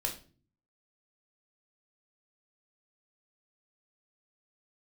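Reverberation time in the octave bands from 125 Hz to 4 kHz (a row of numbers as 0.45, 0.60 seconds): 0.85, 0.70, 0.45, 0.35, 0.35, 0.30 seconds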